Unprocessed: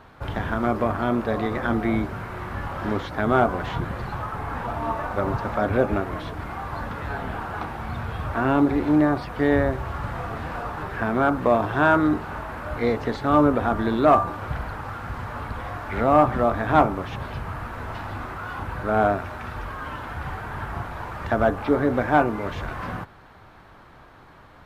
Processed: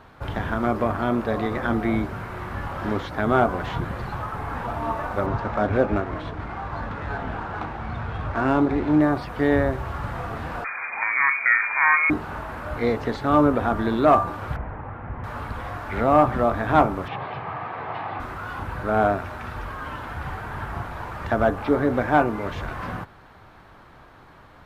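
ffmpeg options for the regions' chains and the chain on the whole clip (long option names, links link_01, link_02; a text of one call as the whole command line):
ffmpeg -i in.wav -filter_complex "[0:a]asettb=1/sr,asplit=3[link_01][link_02][link_03];[link_01]atrim=end=5.264[link_04];[link_02]atrim=start=5.26:end=9.01,asetpts=PTS-STARTPTS,afade=type=in:duration=0.004:curve=qsin,afade=type=out:start_time=3.746:duration=0.004:curve=qsin,adynamicsmooth=sensitivity=4.5:basefreq=4000,asplit=2[link_05][link_06];[link_06]adelay=19,volume=-12dB[link_07];[link_05][link_07]amix=inputs=2:normalize=0,atrim=end_sample=165375[link_08];[link_03]atrim=start=9.006[link_09];[link_04][link_08]acrossfade=duration=0.004:curve1=hsin:curve2=qsin[link_10];[link_10][link_09]acrossfade=duration=0.004:curve1=qsin:curve2=hsin,asettb=1/sr,asplit=3[link_11][link_12][link_13];[link_11]atrim=end=10.644[link_14];[link_12]atrim=start=10.64:end=12.1,asetpts=PTS-STARTPTS,afade=type=in:duration=0.004:curve=qsin,afade=type=out:start_time=1.456:duration=0.004:curve=qsin,asubboost=boost=5:cutoff=110,lowpass=frequency=2100:width_type=q:width=0.5098,lowpass=frequency=2100:width_type=q:width=0.6013,lowpass=frequency=2100:width_type=q:width=0.9,lowpass=frequency=2100:width_type=q:width=2.563,afreqshift=-2500[link_15];[link_13]atrim=start=12.096[link_16];[link_14][link_15]acrossfade=duration=0.004:curve1=hsin:curve2=qsin[link_17];[link_17][link_16]acrossfade=duration=0.004:curve1=qsin:curve2=hsin,asettb=1/sr,asplit=3[link_18][link_19][link_20];[link_18]atrim=end=14.564[link_21];[link_19]atrim=start=14.56:end=15.24,asetpts=PTS-STARTPTS,afade=type=in:duration=0.004:curve=qsin,afade=type=out:start_time=0.676:duration=0.004:curve=qsin,lowpass=frequency=2100:width=0.5412,lowpass=frequency=2100:width=1.3066,equalizer=frequency=1400:width_type=o:width=0.79:gain=-7.5[link_22];[link_20]atrim=start=15.236[link_23];[link_21][link_22]acrossfade=duration=0.004:curve1=hsin:curve2=qsin[link_24];[link_24][link_23]acrossfade=duration=0.004:curve1=qsin:curve2=hsin,asettb=1/sr,asplit=3[link_25][link_26][link_27];[link_25]atrim=end=17.084[link_28];[link_26]atrim=start=17.08:end=18.2,asetpts=PTS-STARTPTS,afade=type=in:duration=0.004:curve=qsin,afade=type=out:start_time=1.116:duration=0.004:curve=qsin,highpass=frequency=120:width=0.5412,highpass=frequency=120:width=1.3066,equalizer=frequency=230:width_type=q:width=4:gain=-8,equalizer=frequency=430:width_type=q:width=4:gain=3,equalizer=frequency=760:width_type=q:width=4:gain=9,equalizer=frequency=1200:width_type=q:width=4:gain=5,equalizer=frequency=2200:width_type=q:width=4:gain=4,lowpass=frequency=3800:width=0.5412,lowpass=frequency=3800:width=1.3066,bandreject=frequency=1400:width=9.6[link_29];[link_27]atrim=start=18.196[link_30];[link_28][link_29]acrossfade=duration=0.004:curve1=hsin:curve2=qsin[link_31];[link_31][link_30]acrossfade=duration=0.004:curve1=qsin:curve2=hsin" out.wav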